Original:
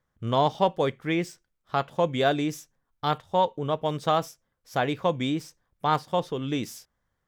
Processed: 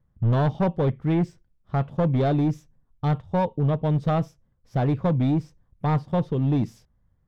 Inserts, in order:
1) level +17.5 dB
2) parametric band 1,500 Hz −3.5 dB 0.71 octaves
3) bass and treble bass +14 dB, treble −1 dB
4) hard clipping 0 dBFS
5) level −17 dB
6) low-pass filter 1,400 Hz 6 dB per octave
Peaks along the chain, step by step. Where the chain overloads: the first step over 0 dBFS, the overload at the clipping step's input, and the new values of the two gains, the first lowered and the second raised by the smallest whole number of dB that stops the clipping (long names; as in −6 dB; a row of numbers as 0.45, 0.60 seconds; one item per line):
+7.5, +7.5, +10.0, 0.0, −17.0, −17.0 dBFS
step 1, 10.0 dB
step 1 +7.5 dB, step 5 −7 dB